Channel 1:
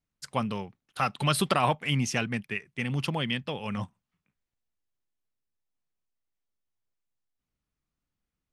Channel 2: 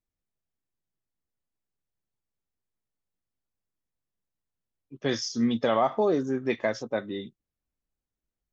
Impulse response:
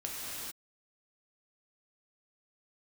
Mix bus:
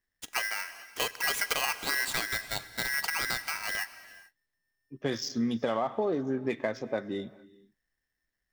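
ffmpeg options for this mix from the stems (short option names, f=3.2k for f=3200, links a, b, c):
-filter_complex "[0:a]aeval=exprs='val(0)*sgn(sin(2*PI*1800*n/s))':c=same,volume=-1.5dB,asplit=2[a][b];[b]volume=-16.5dB[c];[1:a]adynamicsmooth=sensitivity=6:basefreq=3.4k,volume=-0.5dB,asplit=2[d][e];[e]volume=-22dB[f];[2:a]atrim=start_sample=2205[g];[c][f]amix=inputs=2:normalize=0[h];[h][g]afir=irnorm=-1:irlink=0[i];[a][d][i]amix=inputs=3:normalize=0,acompressor=threshold=-26dB:ratio=4"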